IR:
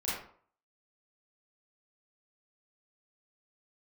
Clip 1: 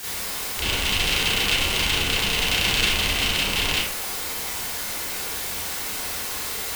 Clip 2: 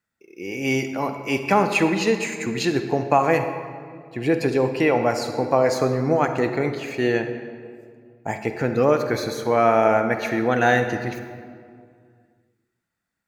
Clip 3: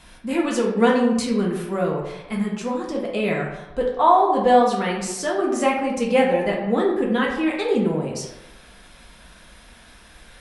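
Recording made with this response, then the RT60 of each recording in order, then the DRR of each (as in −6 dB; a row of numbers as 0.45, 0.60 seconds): 1; 0.50, 2.2, 0.95 seconds; −9.5, 7.5, −2.5 decibels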